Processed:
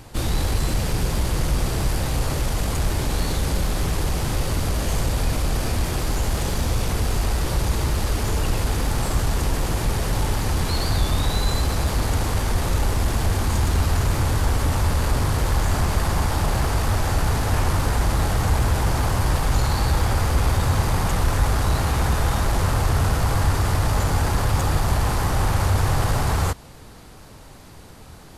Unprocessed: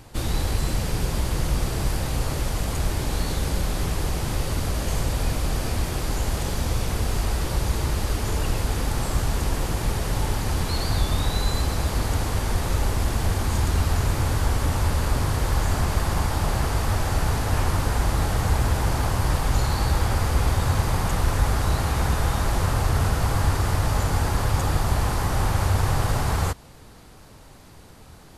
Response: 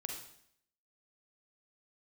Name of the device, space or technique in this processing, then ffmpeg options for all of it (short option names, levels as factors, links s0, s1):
parallel distortion: -filter_complex "[0:a]asplit=2[s0][s1];[s1]asoftclip=type=hard:threshold=0.0562,volume=0.501[s2];[s0][s2]amix=inputs=2:normalize=0"